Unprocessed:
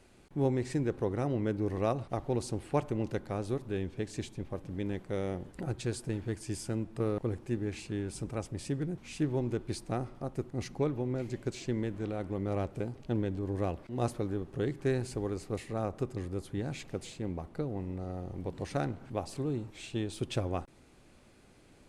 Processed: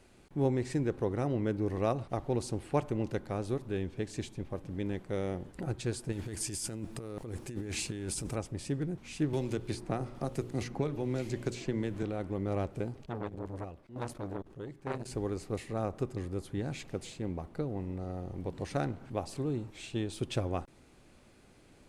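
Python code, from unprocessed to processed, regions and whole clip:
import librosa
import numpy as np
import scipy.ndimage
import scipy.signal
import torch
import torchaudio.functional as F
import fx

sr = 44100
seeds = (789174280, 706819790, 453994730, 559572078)

y = fx.chain(x, sr, fx.high_shelf(hz=4000.0, db=11.5),
    fx.over_compress(threshold_db=-38.0, ratio=-1.0), at=(6.12, 8.36))
y = fx.chain(y, sr, fx.hum_notches(base_hz=60, count=10),
    fx.band_squash(depth_pct=100), at=(9.33, 12.03))
y = fx.chain(y, sr, fx.chopper(hz=1.1, depth_pct=65, duty_pct=65),
    fx.transformer_sat(knee_hz=1100.0), at=(13.05, 15.11))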